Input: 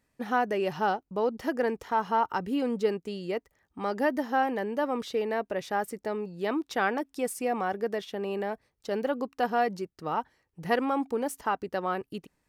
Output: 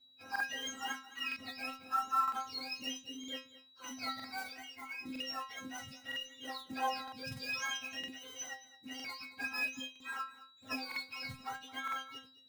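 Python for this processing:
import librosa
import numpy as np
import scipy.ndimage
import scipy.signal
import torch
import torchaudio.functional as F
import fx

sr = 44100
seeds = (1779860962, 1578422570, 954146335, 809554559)

y = fx.octave_mirror(x, sr, pivot_hz=1100.0)
y = fx.env_lowpass(y, sr, base_hz=2400.0, full_db=-26.0)
y = fx.high_shelf_res(y, sr, hz=2600.0, db=6.5, q=1.5, at=(7.24, 7.77))
y = y + 10.0 ** (-61.0 / 20.0) * np.sin(2.0 * np.pi * 3900.0 * np.arange(len(y)) / sr)
y = fx.fixed_phaser(y, sr, hz=830.0, stages=8, at=(4.53, 5.04), fade=0.02)
y = fx.quant_float(y, sr, bits=2)
y = fx.stiff_resonator(y, sr, f0_hz=260.0, decay_s=0.31, stiffness=0.002)
y = y + 10.0 ** (-17.0 / 20.0) * np.pad(y, (int(217 * sr / 1000.0), 0))[:len(y)]
y = fx.buffer_crackle(y, sr, first_s=0.31, period_s=0.96, block=2048, kind='repeat')
y = F.gain(torch.from_numpy(y), 6.5).numpy()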